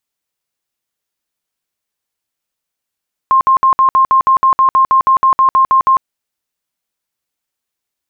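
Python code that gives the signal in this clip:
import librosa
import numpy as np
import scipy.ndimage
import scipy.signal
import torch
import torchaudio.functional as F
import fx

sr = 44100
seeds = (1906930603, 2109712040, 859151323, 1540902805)

y = fx.tone_burst(sr, hz=1060.0, cycles=105, every_s=0.16, bursts=17, level_db=-6.0)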